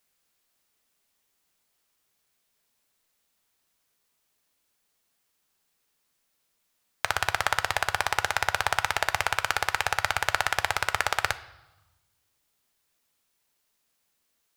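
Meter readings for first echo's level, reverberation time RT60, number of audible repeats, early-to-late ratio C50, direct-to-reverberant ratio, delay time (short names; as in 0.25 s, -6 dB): none, 1.1 s, none, 16.0 dB, 11.5 dB, none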